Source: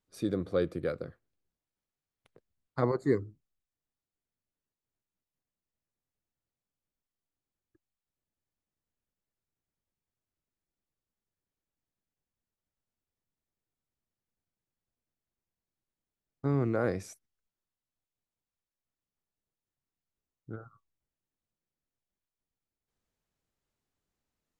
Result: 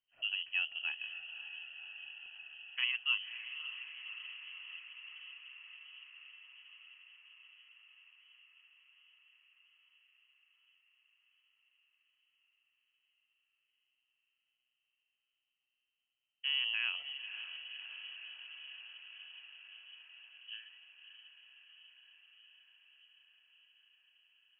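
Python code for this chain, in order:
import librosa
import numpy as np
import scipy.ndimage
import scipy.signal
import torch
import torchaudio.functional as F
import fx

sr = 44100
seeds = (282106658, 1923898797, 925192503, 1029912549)

y = fx.echo_diffused(x, sr, ms=568, feedback_pct=77, wet_db=-10.0)
y = fx.freq_invert(y, sr, carrier_hz=3100)
y = y * librosa.db_to_amplitude(-6.5)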